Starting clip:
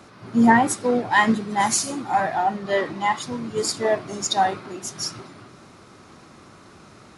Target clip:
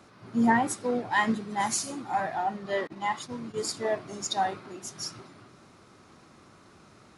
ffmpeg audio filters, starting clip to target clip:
-filter_complex "[0:a]asettb=1/sr,asplit=3[a][b][c];[a]atrim=end=2.874[d];[b]atrim=start=2.87:end=3.54,asetpts=PTS-STARTPTS,afade=t=in:d=0.004:c=qsin,afade=t=out:st=0.666:d=0.004:c=qsin,agate=range=-29dB:threshold=-32dB:ratio=16:detection=peak[e];[c]atrim=start=3.536[f];[d][e]acrossfade=d=0.004:c1=hsin:c2=qsin[g];[g][f]acrossfade=d=0.004:c1=qsin:c2=hsin,volume=-7.5dB"

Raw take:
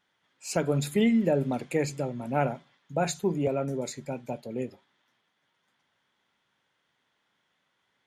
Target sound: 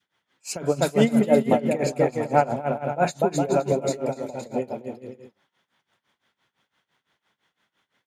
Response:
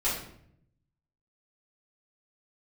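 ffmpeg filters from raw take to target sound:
-af "aecho=1:1:250|412.5|518.1|586.8|631.4:0.631|0.398|0.251|0.158|0.1,tremolo=f=5.9:d=0.89,adynamicequalizer=threshold=0.00891:dfrequency=750:dqfactor=0.72:tfrequency=750:tqfactor=0.72:attack=5:release=100:ratio=0.375:range=3.5:mode=boostabove:tftype=bell,volume=4dB"

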